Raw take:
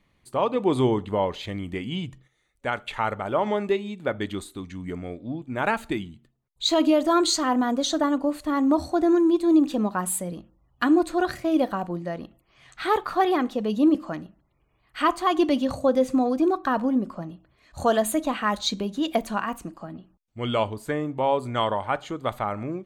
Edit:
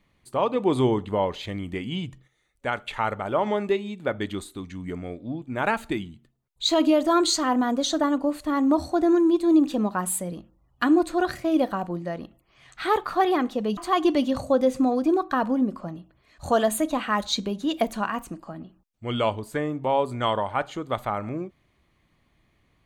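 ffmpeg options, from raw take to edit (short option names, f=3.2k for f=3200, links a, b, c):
-filter_complex "[0:a]asplit=2[a][b];[a]atrim=end=13.772[c];[b]atrim=start=15.108[d];[c][d]acrossfade=d=0.004:c1=hsin:c2=hsin"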